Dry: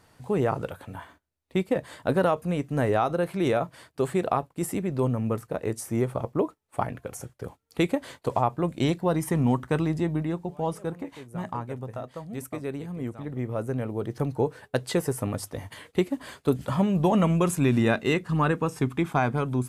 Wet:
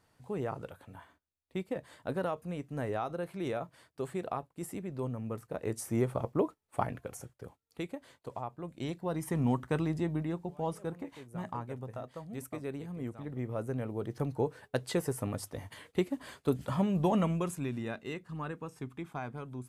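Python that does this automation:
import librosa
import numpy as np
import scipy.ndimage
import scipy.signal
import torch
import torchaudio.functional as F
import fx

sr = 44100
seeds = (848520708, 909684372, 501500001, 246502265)

y = fx.gain(x, sr, db=fx.line((5.29, -11.0), (5.82, -4.0), (6.94, -4.0), (7.89, -15.5), (8.63, -15.5), (9.45, -6.0), (17.14, -6.0), (17.79, -15.5)))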